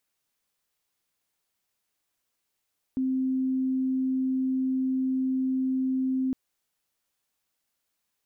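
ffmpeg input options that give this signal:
-f lavfi -i "aevalsrc='0.0668*sin(2*PI*261*t)':d=3.36:s=44100"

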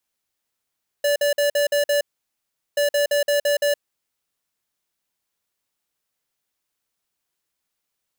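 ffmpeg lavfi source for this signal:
-f lavfi -i "aevalsrc='0.112*(2*lt(mod(579*t,1),0.5)-1)*clip(min(mod(mod(t,1.73),0.17),0.12-mod(mod(t,1.73),0.17))/0.005,0,1)*lt(mod(t,1.73),1.02)':d=3.46:s=44100"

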